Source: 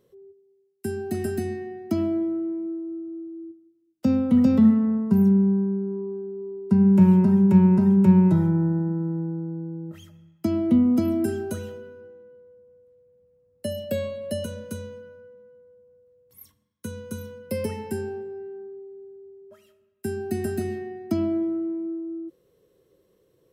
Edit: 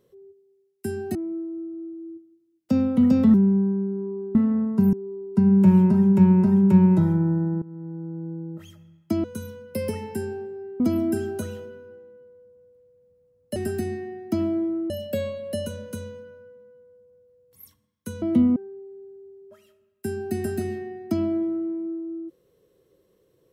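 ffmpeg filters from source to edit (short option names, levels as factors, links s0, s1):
-filter_complex "[0:a]asplit=12[s0][s1][s2][s3][s4][s5][s6][s7][s8][s9][s10][s11];[s0]atrim=end=1.152[s12];[s1]atrim=start=2.488:end=4.682[s13];[s2]atrim=start=5.258:end=6.272[s14];[s3]atrim=start=4.678:end=5.262[s15];[s4]atrim=start=6.268:end=8.96,asetpts=PTS-STARTPTS,afade=t=out:st=2.688:d=0.004:c=hsin:silence=0.133352[s16];[s5]atrim=start=8.96:end=10.582,asetpts=PTS-STARTPTS,afade=t=in:d=0.7:silence=0.133352[s17];[s6]atrim=start=16.998:end=18.562[s18];[s7]atrim=start=10.918:end=13.682[s19];[s8]atrim=start=1.148:end=2.492[s20];[s9]atrim=start=13.678:end=17.002[s21];[s10]atrim=start=10.578:end=10.922[s22];[s11]atrim=start=18.558[s23];[s12][s13]acrossfade=d=0.004:c1=hsin:c2=hsin[s24];[s24][s14]acrossfade=d=0.004:c1=hsin:c2=hsin[s25];[s25][s15]acrossfade=d=0.004:c1=hsin:c2=hsin[s26];[s16][s17]concat=n=2:v=0:a=1[s27];[s26][s27]acrossfade=d=0.004:c1=hsin:c2=hsin[s28];[s28][s18]acrossfade=d=0.004:c1=hsin:c2=hsin[s29];[s29][s19]acrossfade=d=0.004:c1=hsin:c2=hsin[s30];[s30][s20]acrossfade=d=0.004:c1=hsin:c2=hsin[s31];[s31][s21]acrossfade=d=0.004:c1=hsin:c2=hsin[s32];[s32][s22]acrossfade=d=0.004:c1=hsin:c2=hsin[s33];[s33][s23]acrossfade=d=0.004:c1=hsin:c2=hsin"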